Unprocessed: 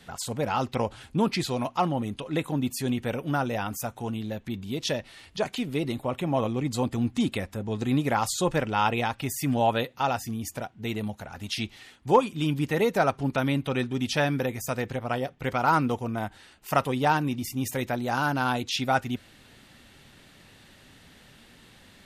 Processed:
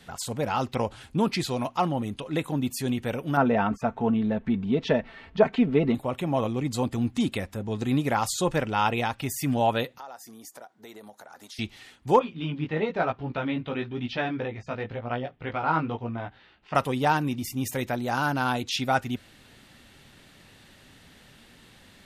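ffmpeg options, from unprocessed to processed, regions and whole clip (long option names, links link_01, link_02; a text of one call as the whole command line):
ffmpeg -i in.wav -filter_complex "[0:a]asettb=1/sr,asplit=3[link_01][link_02][link_03];[link_01]atrim=end=3.374[link_04];[link_02]atrim=start=3.37:end=5.95,asetpts=PTS-STARTPTS,afade=type=in:duration=0.004:curve=qsin,afade=type=out:start_time=2.576:duration=0.004:curve=qsin,lowpass=1800,acontrast=55,aecho=1:1:4.5:0.5,atrim=end_sample=113778[link_05];[link_03]atrim=start=5.946[link_06];[link_04][link_05]acrossfade=duration=0.004:curve1=hsin:curve2=qsin[link_07];[link_07][link_06]acrossfade=duration=0.004:curve1=qsin:curve2=hsin,asettb=1/sr,asplit=3[link_08][link_09][link_10];[link_08]atrim=end=9.984[link_11];[link_09]atrim=start=9.98:end=11.59,asetpts=PTS-STARTPTS,afade=type=in:duration=0.004:curve=qsin,afade=type=out:start_time=1.606:duration=0.004:curve=qsin,highpass=450,equalizer=frequency=2700:width=2:gain=-11.5,acompressor=threshold=-43dB:ratio=3:attack=3.2:release=140:knee=1:detection=peak[link_12];[link_10]atrim=start=11.586[link_13];[link_11][link_12]acrossfade=duration=0.004:curve1=hsin:curve2=qsin[link_14];[link_14][link_13]acrossfade=duration=0.004:curve1=qsin:curve2=hsin,asettb=1/sr,asplit=3[link_15][link_16][link_17];[link_15]atrim=end=12.194[link_18];[link_16]atrim=start=12.19:end=16.75,asetpts=PTS-STARTPTS,afade=type=in:duration=0.004:curve=qsin,afade=type=out:start_time=4.556:duration=0.004:curve=qsin,lowpass=frequency=3800:width=0.5412,lowpass=frequency=3800:width=1.3066,flanger=delay=16.5:depth=2.6:speed=1[link_19];[link_17]atrim=start=16.746[link_20];[link_18][link_19]acrossfade=duration=0.004:curve1=hsin:curve2=qsin[link_21];[link_21][link_20]acrossfade=duration=0.004:curve1=qsin:curve2=hsin" out.wav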